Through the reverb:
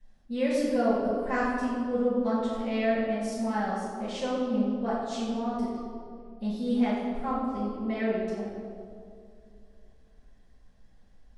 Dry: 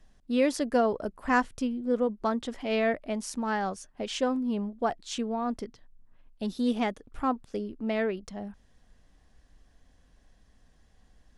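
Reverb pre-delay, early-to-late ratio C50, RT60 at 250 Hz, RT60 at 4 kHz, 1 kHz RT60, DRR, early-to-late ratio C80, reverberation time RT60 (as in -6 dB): 5 ms, -1.0 dB, 2.7 s, 1.3 s, 2.0 s, -14.0 dB, 1.0 dB, 2.4 s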